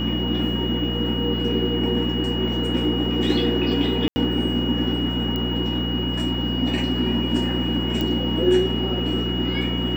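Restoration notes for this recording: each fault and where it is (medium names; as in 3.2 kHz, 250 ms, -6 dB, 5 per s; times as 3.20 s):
hum 60 Hz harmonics 3 -27 dBFS
whine 2.9 kHz -28 dBFS
4.08–4.16 s: dropout 80 ms
5.36 s: pop -15 dBFS
8.01 s: pop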